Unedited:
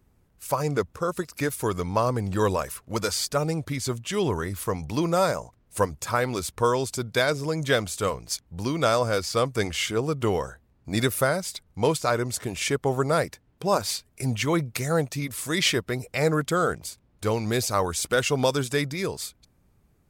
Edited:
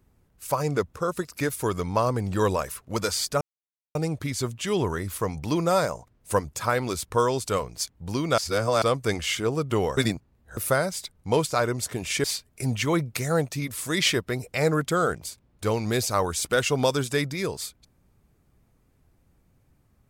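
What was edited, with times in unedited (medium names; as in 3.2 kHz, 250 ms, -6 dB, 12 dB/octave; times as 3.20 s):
3.41 s: insert silence 0.54 s
6.95–8.00 s: delete
8.89–9.33 s: reverse
10.48–11.08 s: reverse
12.75–13.84 s: delete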